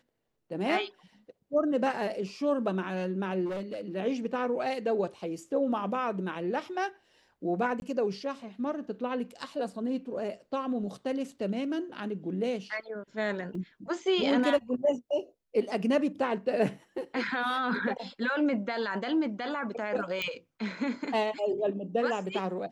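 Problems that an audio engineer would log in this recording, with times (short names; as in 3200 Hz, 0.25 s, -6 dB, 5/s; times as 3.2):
3.45–3.96 clipped -31 dBFS
7.8–7.82 gap 21 ms
13.55 gap 2.9 ms
20.22 pop -18 dBFS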